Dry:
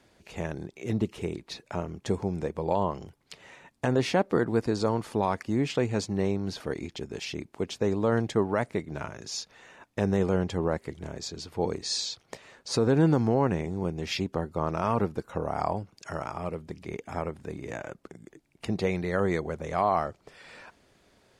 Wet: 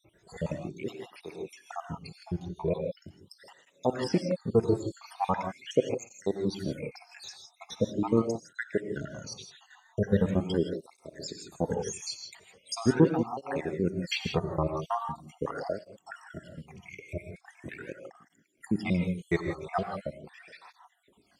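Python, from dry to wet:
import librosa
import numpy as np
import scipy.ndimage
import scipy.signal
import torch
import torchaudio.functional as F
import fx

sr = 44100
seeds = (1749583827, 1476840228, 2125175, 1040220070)

y = fx.spec_dropout(x, sr, seeds[0], share_pct=76)
y = fx.rev_gated(y, sr, seeds[1], gate_ms=190, shape='rising', drr_db=5.0)
y = fx.flanger_cancel(y, sr, hz=0.41, depth_ms=4.5)
y = y * librosa.db_to_amplitude(5.0)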